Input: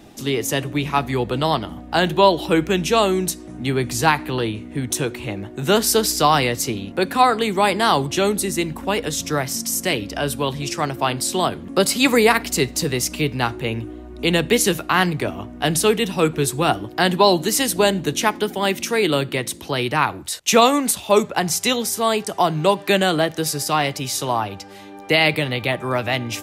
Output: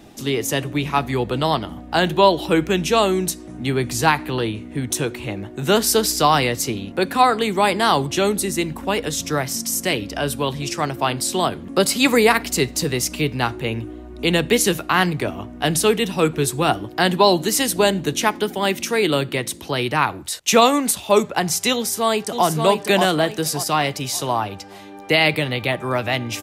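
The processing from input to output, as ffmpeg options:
-filter_complex "[0:a]asplit=2[a][b];[b]afade=t=in:st=21.74:d=0.01,afade=t=out:st=22.47:d=0.01,aecho=0:1:580|1160|1740|2320:0.562341|0.196819|0.0688868|0.0241104[c];[a][c]amix=inputs=2:normalize=0"

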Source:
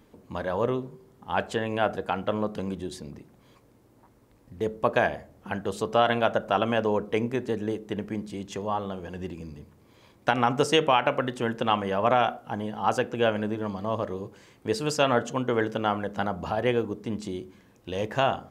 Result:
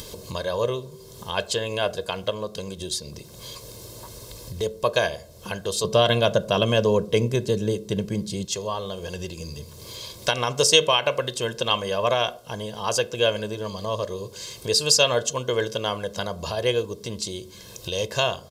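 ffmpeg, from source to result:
-filter_complex "[0:a]asettb=1/sr,asplit=3[a][b][c];[a]atrim=end=5.844[d];[b]atrim=start=5.84:end=8.45,asetpts=PTS-STARTPTS,afade=t=in:d=0.004:c=qsin,afade=t=out:st=2.606:d=0.004:c=qsin,equalizer=f=160:t=o:w=2.1:g=11.5[e];[c]atrim=start=8.446[f];[d][e]acrossfade=d=0.004:c1=hsin:c2=qsin[g];[g][f]acrossfade=d=0.004:c1=qsin:c2=hsin,asplit=3[h][i][j];[h]atrim=end=2.302[k];[i]atrim=start=2.298:end=2.812,asetpts=PTS-STARTPTS,volume=-3.5dB[l];[j]atrim=start=2.808[m];[k][l]acrossfade=d=0.004:c1=hsin:c2=hsin[n];[n][m]acrossfade=d=0.004:c1=hsin:c2=hsin,highshelf=f=2.8k:t=q:w=1.5:g=13,acompressor=mode=upward:threshold=-26dB:ratio=2.5,aecho=1:1:1.9:0.7,volume=-1dB"

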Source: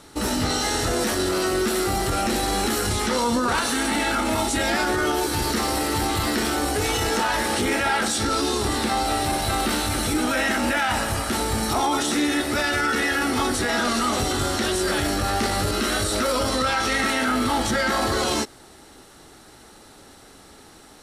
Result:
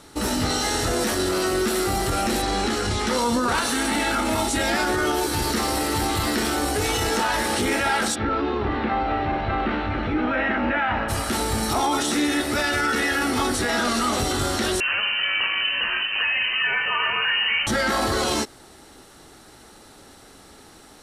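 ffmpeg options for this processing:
-filter_complex "[0:a]asettb=1/sr,asplit=3[a][b][c];[a]atrim=end=2.424[d];[b]atrim=start=2.42:end=3.07,asetpts=PTS-STARTPTS,afade=t=in:d=0.004:c=qsin,afade=t=out:st=0.646:d=0.004:c=qsin,lowpass=6.5k[e];[c]atrim=start=3.066[f];[d][e]acrossfade=d=0.004:c1=hsin:c2=qsin[g];[g][f]acrossfade=d=0.004:c1=qsin:c2=hsin,asplit=3[h][i][j];[h]afade=t=out:st=8.14:d=0.02[k];[i]lowpass=f=2.6k:w=0.5412,lowpass=f=2.6k:w=1.3066,afade=t=in:st=8.14:d=0.02,afade=t=out:st=11.08:d=0.02[l];[j]afade=t=in:st=11.08:d=0.02[m];[k][l][m]amix=inputs=3:normalize=0,asettb=1/sr,asplit=3[n][o][p];[n]atrim=end=14.804[q];[o]atrim=start=14.8:end=17.67,asetpts=PTS-STARTPTS,afade=t=in:d=0.004:c=qsin,afade=t=out:st=2.866:d=0.004:c=qsin,lowpass=f=2.6k:t=q:w=0.5098,lowpass=f=2.6k:t=q:w=0.6013,lowpass=f=2.6k:t=q:w=0.9,lowpass=f=2.6k:t=q:w=2.563,afreqshift=-3100[r];[p]atrim=start=17.666[s];[q][r]acrossfade=d=0.004:c1=hsin:c2=qsin[t];[t][s]acrossfade=d=0.004:c1=qsin:c2=hsin"

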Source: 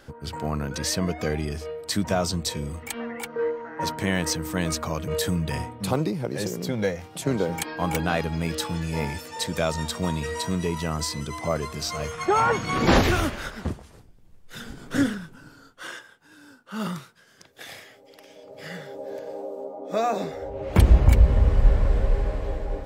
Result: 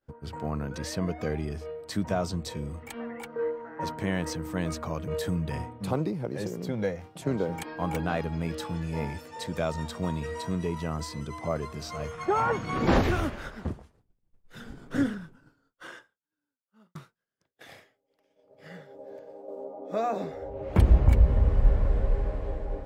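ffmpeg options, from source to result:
-filter_complex "[0:a]asplit=3[a][b][c];[a]atrim=end=16.95,asetpts=PTS-STARTPTS,afade=t=out:st=15.85:d=1.1[d];[b]atrim=start=16.95:end=19.48,asetpts=PTS-STARTPTS,afade=t=in:d=0.004:c=hsin,afade=t=out:st=0.83:d=1.7:silence=0.473151[e];[c]atrim=start=19.48,asetpts=PTS-STARTPTS,afade=t=in:d=0.004:c=hsin:silence=0.473151[f];[d][e][f]concat=n=3:v=0:a=1,agate=range=-33dB:threshold=-39dB:ratio=3:detection=peak,highshelf=f=2.4k:g=-9.5,volume=-3.5dB"

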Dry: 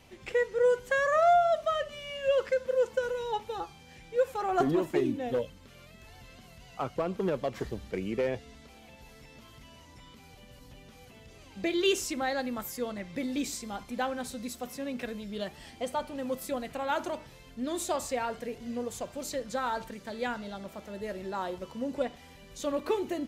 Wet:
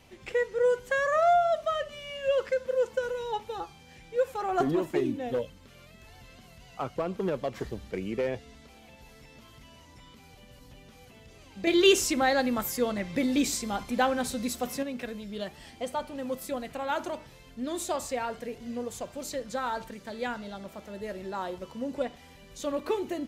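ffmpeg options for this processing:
-filter_complex "[0:a]asettb=1/sr,asplit=3[a][b][c];[a]atrim=end=11.674[d];[b]atrim=start=11.67:end=14.83,asetpts=PTS-STARTPTS,afade=t=in:d=0.004:c=qsin,afade=t=out:st=3.156:d=0.004:c=qsin,acontrast=64[e];[c]atrim=start=14.826[f];[d][e]acrossfade=d=0.004:c1=hsin:c2=qsin[g];[g][f]acrossfade=d=0.004:c1=qsin:c2=hsin"

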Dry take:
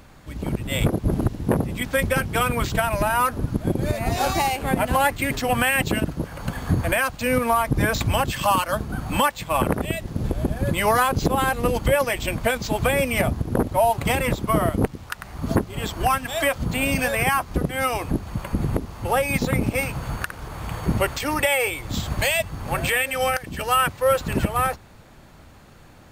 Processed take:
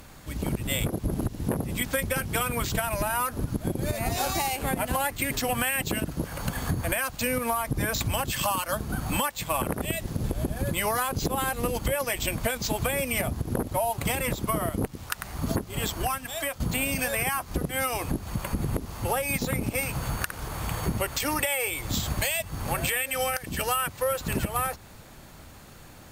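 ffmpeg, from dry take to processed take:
-filter_complex "[0:a]asplit=2[a][b];[a]atrim=end=16.6,asetpts=PTS-STARTPTS,afade=t=out:st=15.85:d=0.75:c=qua:silence=0.298538[c];[b]atrim=start=16.6,asetpts=PTS-STARTPTS,afade=t=in:d=0.004:c=hsin:silence=0.298538[d];[c][d]concat=n=2:v=0:a=1,aemphasis=mode=production:type=cd,acompressor=threshold=-24dB:ratio=6"

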